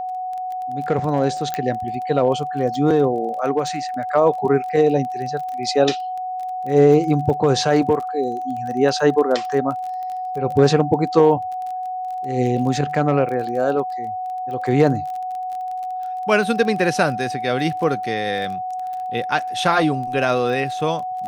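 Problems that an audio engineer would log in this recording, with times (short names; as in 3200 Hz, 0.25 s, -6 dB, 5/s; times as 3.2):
crackle 21/s -28 dBFS
tone 740 Hz -24 dBFS
1.54 pop -9 dBFS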